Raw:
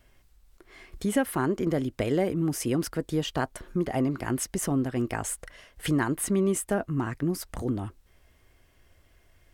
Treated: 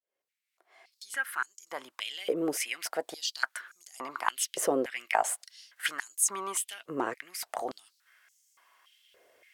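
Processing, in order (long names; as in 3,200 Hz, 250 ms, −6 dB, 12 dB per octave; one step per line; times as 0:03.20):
fade in at the beginning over 2.59 s
harmonic generator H 2 −16 dB, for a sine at −12.5 dBFS
high-pass on a step sequencer 3.5 Hz 490–6,600 Hz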